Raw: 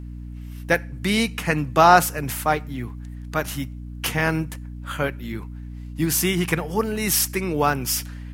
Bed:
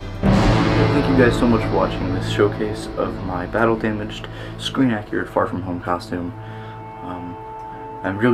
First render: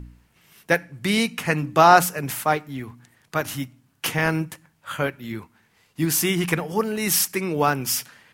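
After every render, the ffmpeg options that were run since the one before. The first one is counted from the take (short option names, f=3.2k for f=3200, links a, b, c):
-af "bandreject=f=60:t=h:w=4,bandreject=f=120:t=h:w=4,bandreject=f=180:t=h:w=4,bandreject=f=240:t=h:w=4,bandreject=f=300:t=h:w=4"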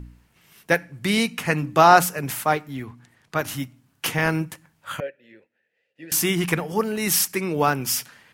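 -filter_complex "[0:a]asettb=1/sr,asplit=3[a][b][c];[a]atrim=end=2.834[d];[b]atrim=start=2.83:end=3.39,asetpts=PTS-STARTPTS,afade=t=in:d=0.004:c=qsin,afade=t=out:st=0.556:d=0.004:c=qsin,highshelf=f=9.7k:g=-10.5[e];[c]atrim=start=3.386[f];[d][e]acrossfade=d=0.004:c1=hsin:c2=qsin[g];[g][f]acrossfade=d=0.004:c1=qsin:c2=hsin,asettb=1/sr,asplit=3[h][i][j];[h]atrim=end=5.004[k];[i]atrim=start=5:end=6.12,asetpts=PTS-STARTPTS,afade=t=in:d=0.004:c=qsin,afade=t=out:st=1.116:d=0.004:c=qsin,asplit=3[l][m][n];[l]bandpass=f=530:t=q:w=8,volume=0dB[o];[m]bandpass=f=1.84k:t=q:w=8,volume=-6dB[p];[n]bandpass=f=2.48k:t=q:w=8,volume=-9dB[q];[o][p][q]amix=inputs=3:normalize=0[r];[j]atrim=start=6.116[s];[k][r]acrossfade=d=0.004:c1=hsin:c2=qsin[t];[t][s]acrossfade=d=0.004:c1=qsin:c2=hsin"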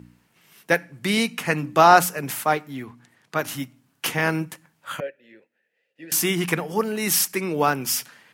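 -af "highpass=150"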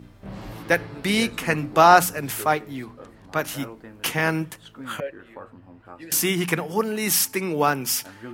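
-filter_complex "[1:a]volume=-22dB[a];[0:a][a]amix=inputs=2:normalize=0"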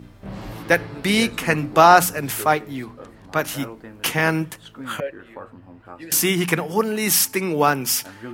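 -af "volume=3dB,alimiter=limit=-1dB:level=0:latency=1"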